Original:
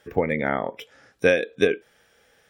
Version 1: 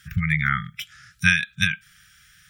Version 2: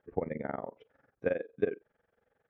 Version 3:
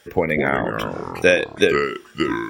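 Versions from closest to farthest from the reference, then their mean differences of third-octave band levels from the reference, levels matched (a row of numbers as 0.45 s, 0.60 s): 2, 3, 1; 4.0 dB, 7.0 dB, 12.5 dB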